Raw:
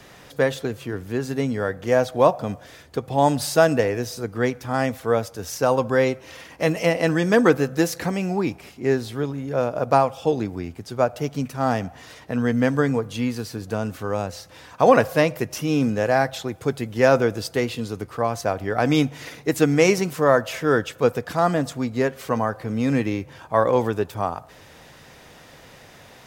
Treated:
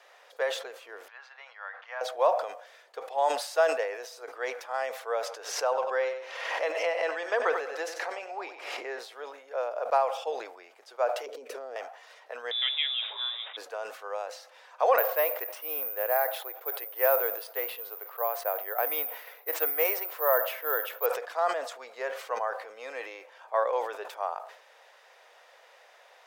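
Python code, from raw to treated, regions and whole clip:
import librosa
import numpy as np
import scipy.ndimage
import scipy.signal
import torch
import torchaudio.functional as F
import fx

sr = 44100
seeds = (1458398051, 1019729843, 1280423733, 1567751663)

y = fx.chain(x, sr, fx.highpass(hz=920.0, slope=24),
    fx.air_absorb(metres=260.0), at=(1.08, 2.01))
y = fx.chain(y, sr, fx.high_shelf(hz=8300.0, db=-12.0),
    fx.echo_feedback(ms=94, feedback_pct=27, wet_db=-12.0),
    fx.pre_swell(db_per_s=44.0), at=(5.26, 8.99))
y = fx.chain(y, sr, fx.low_shelf_res(hz=600.0, db=12.0, q=3.0),
    fx.over_compress(threshold_db=-21.0, ratio=-1.0), at=(11.26, 11.76))
y = fx.chain(y, sr, fx.delta_mod(bps=64000, step_db=-32.0),
    fx.freq_invert(carrier_hz=3700), at=(12.51, 13.57))
y = fx.chain(y, sr, fx.peak_eq(hz=11000.0, db=-14.5, octaves=1.8),
    fx.resample_bad(factor=3, down='none', up='zero_stuff'), at=(14.98, 21.06))
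y = scipy.signal.sosfilt(scipy.signal.butter(6, 510.0, 'highpass', fs=sr, output='sos'), y)
y = fx.high_shelf(y, sr, hz=4800.0, db=-10.5)
y = fx.sustainer(y, sr, db_per_s=83.0)
y = y * 10.0 ** (-6.5 / 20.0)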